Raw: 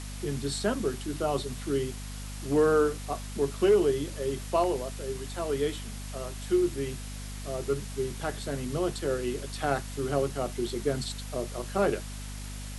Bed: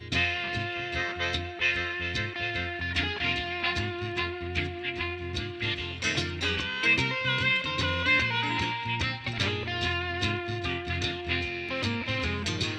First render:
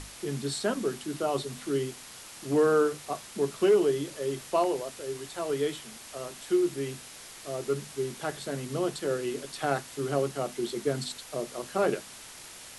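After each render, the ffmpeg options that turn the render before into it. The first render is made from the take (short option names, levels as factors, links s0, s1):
-af "bandreject=f=50:t=h:w=6,bandreject=f=100:t=h:w=6,bandreject=f=150:t=h:w=6,bandreject=f=200:t=h:w=6,bandreject=f=250:t=h:w=6"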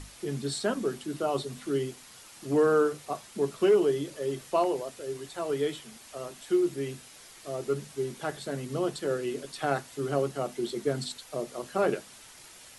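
-af "afftdn=nr=6:nf=-47"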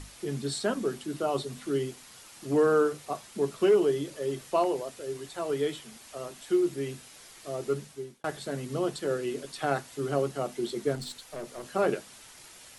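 -filter_complex "[0:a]asettb=1/sr,asplit=3[s0][s1][s2];[s0]atrim=end=10.954[s3];[s1]atrim=start=10.95:end=11.65,asetpts=PTS-STARTPTS,afade=t=in:d=0.004:c=qsin,afade=t=out:st=0.696:d=0.004:c=qsin,aeval=exprs='(tanh(44.7*val(0)+0.3)-tanh(0.3))/44.7':c=same[s4];[s2]atrim=start=11.646[s5];[s3][s4]acrossfade=d=0.004:c1=hsin:c2=qsin[s6];[s6][s5]acrossfade=d=0.004:c1=qsin:c2=hsin,asplit=2[s7][s8];[s7]atrim=end=8.24,asetpts=PTS-STARTPTS,afade=t=out:st=7.73:d=0.51[s9];[s8]atrim=start=8.24,asetpts=PTS-STARTPTS,afade=t=in:d=0.004:c=hsin[s10];[s9][s10]concat=n=2:v=0:a=1"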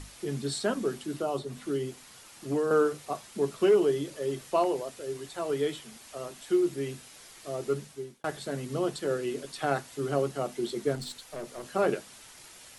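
-filter_complex "[0:a]asettb=1/sr,asplit=3[s0][s1][s2];[s0]atrim=end=1.164[s3];[s1]atrim=start=1.16:end=2.71,asetpts=PTS-STARTPTS,afade=t=in:d=0.004:c=qsin,afade=t=out:st=1.546:d=0.004:c=qsin,acrossover=split=1300|2700[s4][s5][s6];[s4]acompressor=threshold=0.0501:ratio=4[s7];[s5]acompressor=threshold=0.00224:ratio=4[s8];[s6]acompressor=threshold=0.00355:ratio=4[s9];[s7][s8][s9]amix=inputs=3:normalize=0[s10];[s2]atrim=start=2.706[s11];[s3][s10]acrossfade=d=0.004:c1=hsin:c2=qsin[s12];[s12][s11]acrossfade=d=0.004:c1=qsin:c2=hsin"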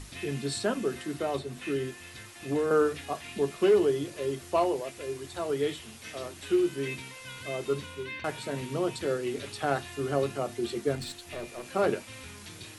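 -filter_complex "[1:a]volume=0.15[s0];[0:a][s0]amix=inputs=2:normalize=0"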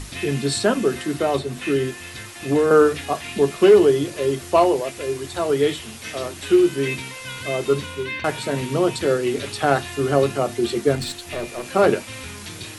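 -af "volume=3.16"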